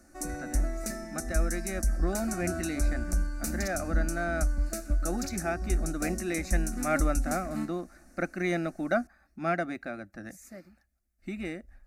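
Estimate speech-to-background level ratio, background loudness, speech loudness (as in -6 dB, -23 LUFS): -0.5 dB, -33.5 LUFS, -34.0 LUFS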